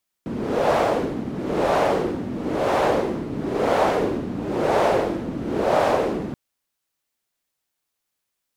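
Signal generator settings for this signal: wind-like swept noise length 6.08 s, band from 240 Hz, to 660 Hz, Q 2.1, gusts 6, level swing 10 dB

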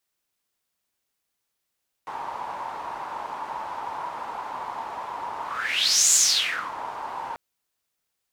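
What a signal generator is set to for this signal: whoosh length 5.29 s, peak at 4.06 s, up 0.76 s, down 0.65 s, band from 930 Hz, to 7.1 kHz, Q 6.4, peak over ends 16 dB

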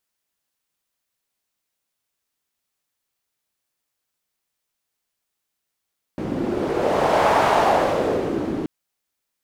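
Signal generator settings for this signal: wind-like swept noise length 2.48 s, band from 290 Hz, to 800 Hz, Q 2.1, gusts 1, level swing 9 dB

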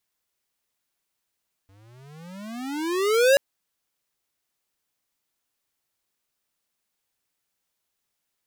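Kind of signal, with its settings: gliding synth tone square, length 1.68 s, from 94.6 Hz, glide +31 st, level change +40 dB, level -15 dB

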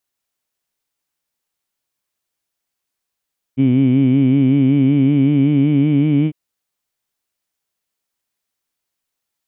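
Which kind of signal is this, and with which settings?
formant-synthesis vowel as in heed, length 2.75 s, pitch 129 Hz, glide +2.5 st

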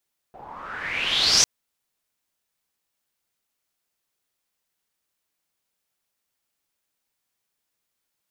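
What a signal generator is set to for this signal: swept filtered noise white, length 1.10 s lowpass, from 670 Hz, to 6.1 kHz, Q 6.5, exponential, gain ramp +19 dB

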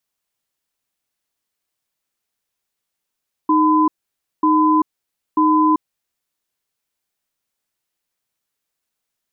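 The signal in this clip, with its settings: cadence 310 Hz, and 1.01 kHz, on 0.39 s, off 0.55 s, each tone -14 dBFS 2.81 s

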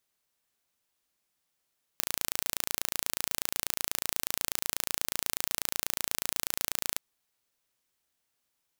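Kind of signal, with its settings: pulse train 28.2 per s, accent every 0, -2 dBFS 5.00 s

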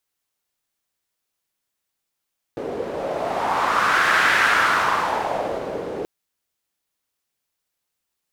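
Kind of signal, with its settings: wind-like swept noise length 3.48 s, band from 440 Hz, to 1.6 kHz, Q 2.9, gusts 1, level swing 12 dB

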